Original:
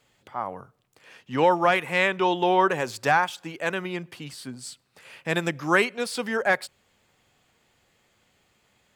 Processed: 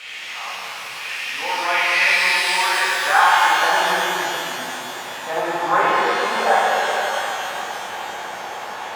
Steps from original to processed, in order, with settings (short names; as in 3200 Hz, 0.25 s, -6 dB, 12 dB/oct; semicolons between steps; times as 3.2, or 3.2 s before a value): zero-crossing step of -25.5 dBFS; band-pass sweep 2500 Hz -> 850 Hz, 2.57–3.47; dynamic EQ 960 Hz, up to +5 dB, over -40 dBFS, Q 0.83; shimmer reverb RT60 3.7 s, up +12 st, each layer -8 dB, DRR -9 dB